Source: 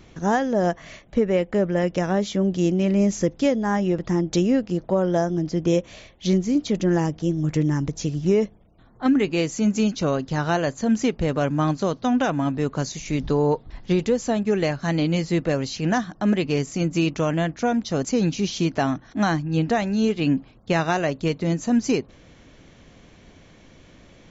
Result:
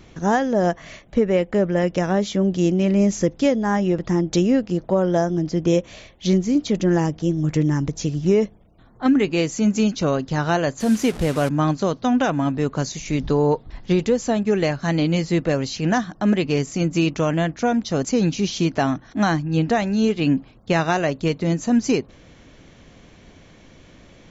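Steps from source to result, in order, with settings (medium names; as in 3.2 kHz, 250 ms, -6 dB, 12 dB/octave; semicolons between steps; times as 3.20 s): 10.80–11.49 s: one-bit delta coder 64 kbps, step -30.5 dBFS; trim +2 dB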